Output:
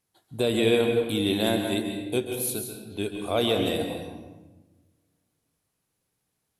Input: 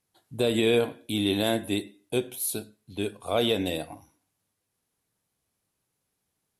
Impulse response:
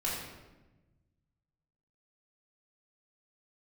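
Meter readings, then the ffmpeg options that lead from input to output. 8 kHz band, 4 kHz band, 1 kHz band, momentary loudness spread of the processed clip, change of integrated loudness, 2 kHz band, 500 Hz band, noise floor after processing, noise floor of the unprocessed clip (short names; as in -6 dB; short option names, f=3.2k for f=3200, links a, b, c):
+1.0 dB, +1.0 dB, +1.5 dB, 14 LU, +1.5 dB, +1.5 dB, +2.0 dB, -79 dBFS, -80 dBFS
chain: -filter_complex "[0:a]asplit=2[a][b];[1:a]atrim=start_sample=2205,adelay=134[c];[b][c]afir=irnorm=-1:irlink=0,volume=-10dB[d];[a][d]amix=inputs=2:normalize=0"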